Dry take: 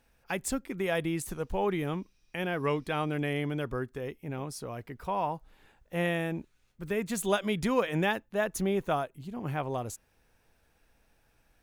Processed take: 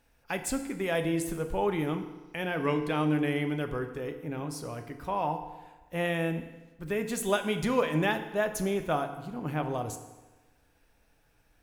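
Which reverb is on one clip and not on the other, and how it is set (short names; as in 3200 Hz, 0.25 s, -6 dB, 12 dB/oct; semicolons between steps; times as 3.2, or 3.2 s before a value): FDN reverb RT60 1.2 s, low-frequency decay 0.95×, high-frequency decay 0.8×, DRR 6.5 dB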